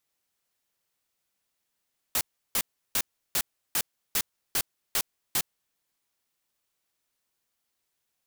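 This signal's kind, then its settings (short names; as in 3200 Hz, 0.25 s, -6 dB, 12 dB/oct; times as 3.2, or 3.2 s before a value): noise bursts white, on 0.06 s, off 0.34 s, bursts 9, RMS -25.5 dBFS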